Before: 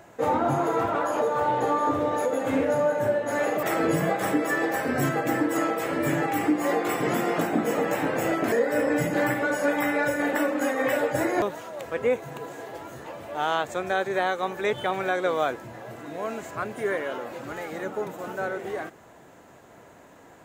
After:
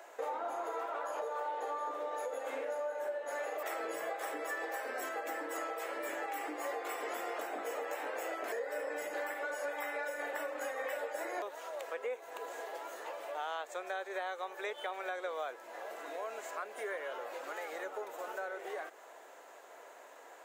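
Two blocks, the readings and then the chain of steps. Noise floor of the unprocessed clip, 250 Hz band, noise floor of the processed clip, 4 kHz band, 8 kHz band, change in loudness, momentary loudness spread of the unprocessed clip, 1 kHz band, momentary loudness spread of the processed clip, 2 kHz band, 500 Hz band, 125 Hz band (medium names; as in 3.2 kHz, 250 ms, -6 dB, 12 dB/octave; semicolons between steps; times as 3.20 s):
-51 dBFS, -24.5 dB, -54 dBFS, -11.0 dB, -10.5 dB, -13.5 dB, 11 LU, -12.0 dB, 6 LU, -11.5 dB, -13.0 dB, under -40 dB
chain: high-pass 450 Hz 24 dB/octave; compression 3:1, threshold -38 dBFS, peak gain reduction 13.5 dB; trim -1.5 dB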